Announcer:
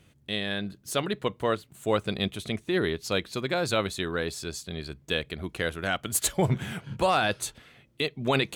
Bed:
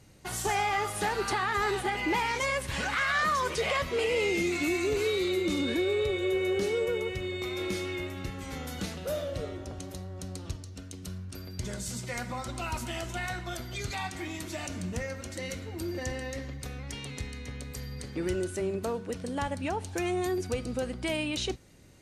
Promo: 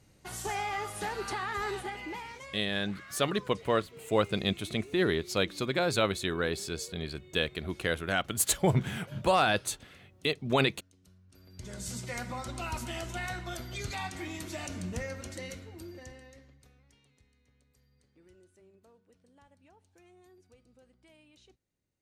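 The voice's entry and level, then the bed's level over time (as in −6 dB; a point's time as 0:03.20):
2.25 s, −1.0 dB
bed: 0:01.75 −5.5 dB
0:02.71 −21.5 dB
0:11.21 −21.5 dB
0:11.86 −2 dB
0:15.28 −2 dB
0:17.18 −29.5 dB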